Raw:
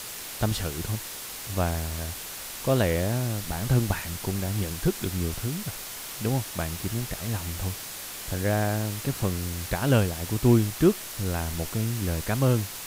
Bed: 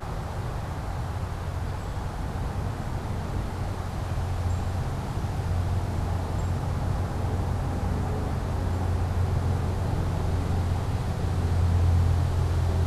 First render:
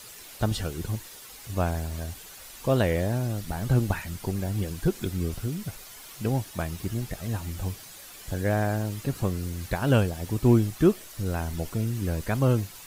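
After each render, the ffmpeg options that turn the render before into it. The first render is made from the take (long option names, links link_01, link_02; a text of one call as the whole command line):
ffmpeg -i in.wav -af "afftdn=noise_reduction=10:noise_floor=-38" out.wav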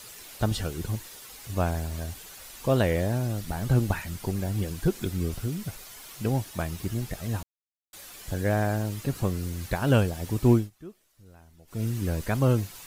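ffmpeg -i in.wav -filter_complex "[0:a]asplit=5[link_01][link_02][link_03][link_04][link_05];[link_01]atrim=end=7.43,asetpts=PTS-STARTPTS,afade=type=out:start_time=7.426:duration=0.004:curve=hsin[link_06];[link_02]atrim=start=7.43:end=7.93,asetpts=PTS-STARTPTS,volume=0[link_07];[link_03]atrim=start=7.93:end=10.7,asetpts=PTS-STARTPTS,afade=type=in:duration=0.004:curve=hsin,afade=type=out:start_time=2.59:duration=0.18:silence=0.0668344[link_08];[link_04]atrim=start=10.7:end=11.67,asetpts=PTS-STARTPTS,volume=-23.5dB[link_09];[link_05]atrim=start=11.67,asetpts=PTS-STARTPTS,afade=type=in:duration=0.18:silence=0.0668344[link_10];[link_06][link_07][link_08][link_09][link_10]concat=n=5:v=0:a=1" out.wav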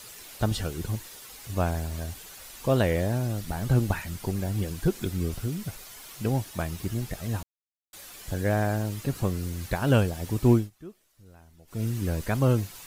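ffmpeg -i in.wav -af anull out.wav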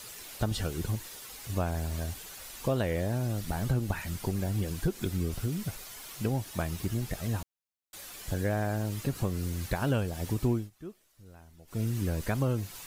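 ffmpeg -i in.wav -af "acompressor=threshold=-26dB:ratio=3" out.wav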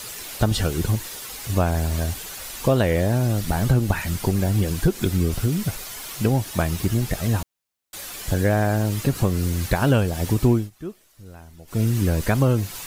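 ffmpeg -i in.wav -af "volume=10dB" out.wav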